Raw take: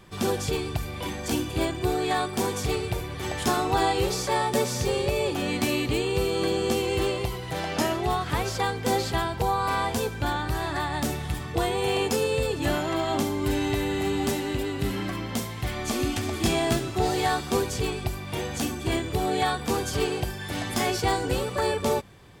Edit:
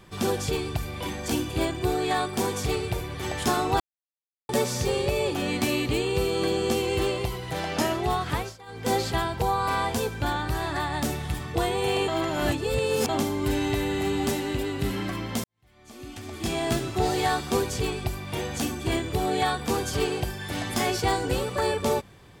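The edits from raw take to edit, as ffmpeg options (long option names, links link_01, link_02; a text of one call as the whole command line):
ffmpeg -i in.wav -filter_complex "[0:a]asplit=8[link_01][link_02][link_03][link_04][link_05][link_06][link_07][link_08];[link_01]atrim=end=3.8,asetpts=PTS-STARTPTS,afade=type=out:start_time=3.796:duration=0.004:curve=hsin[link_09];[link_02]atrim=start=3.8:end=4.49,asetpts=PTS-STARTPTS,volume=0[link_10];[link_03]atrim=start=4.49:end=8.57,asetpts=PTS-STARTPTS,afade=type=in:duration=0.004:curve=hsin,afade=type=out:start_time=3.83:duration=0.25:silence=0.0891251[link_11];[link_04]atrim=start=8.57:end=8.66,asetpts=PTS-STARTPTS,volume=-21dB[link_12];[link_05]atrim=start=8.66:end=12.082,asetpts=PTS-STARTPTS,afade=type=in:duration=0.25:silence=0.0891251[link_13];[link_06]atrim=start=12.078:end=13.092,asetpts=PTS-STARTPTS,areverse[link_14];[link_07]atrim=start=13.088:end=15.44,asetpts=PTS-STARTPTS,afade=type=out:start_time=2.348:duration=0.004:curve=hsin[link_15];[link_08]atrim=start=15.44,asetpts=PTS-STARTPTS,afade=type=in:duration=1.39:curve=qua[link_16];[link_09][link_10][link_11][link_12][link_13]concat=n=5:v=0:a=1[link_17];[link_17][link_14]acrossfade=duration=0.004:curve1=hsin:curve2=hsin[link_18];[link_15][link_16]concat=n=2:v=0:a=1[link_19];[link_18][link_19]acrossfade=duration=0.004:curve1=hsin:curve2=hsin" out.wav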